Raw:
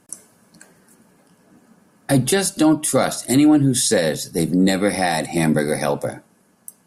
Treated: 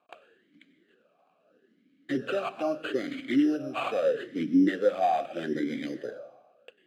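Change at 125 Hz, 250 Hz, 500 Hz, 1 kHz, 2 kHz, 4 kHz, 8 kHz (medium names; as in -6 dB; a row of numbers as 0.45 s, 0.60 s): -22.0 dB, -10.0 dB, -8.0 dB, -6.0 dB, -11.0 dB, -16.0 dB, under -30 dB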